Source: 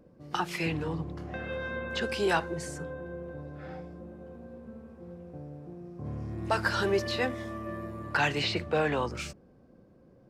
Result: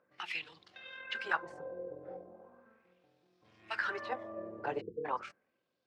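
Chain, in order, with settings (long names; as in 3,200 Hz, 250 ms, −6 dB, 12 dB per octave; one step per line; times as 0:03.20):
time-frequency box erased 0:08.44–0:08.86, 500–12,000 Hz
time stretch by overlap-add 0.57×, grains 48 ms
auto-filter band-pass sine 0.38 Hz 490–3,900 Hz
level +2.5 dB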